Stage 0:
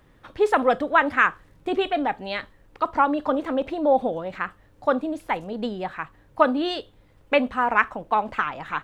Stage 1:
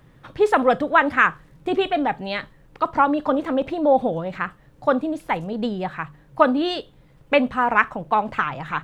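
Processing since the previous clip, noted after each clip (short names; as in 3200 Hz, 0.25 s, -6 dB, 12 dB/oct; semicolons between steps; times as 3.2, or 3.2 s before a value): bell 140 Hz +12.5 dB 0.63 oct; notches 50/100/150 Hz; gain +2 dB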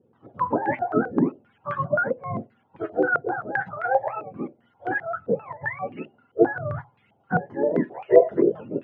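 spectrum mirrored in octaves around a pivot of 650 Hz; spectral gain 8.05–8.49, 340–690 Hz +10 dB; stepped low-pass 7.6 Hz 480–2100 Hz; gain -6.5 dB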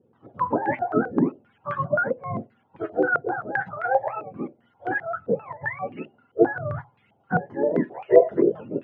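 nothing audible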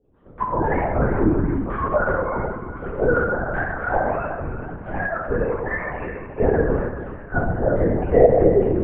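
split-band echo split 820 Hz, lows 0.127 s, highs 0.356 s, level -10 dB; shoebox room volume 540 m³, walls mixed, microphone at 4.9 m; LPC vocoder at 8 kHz whisper; gain -8 dB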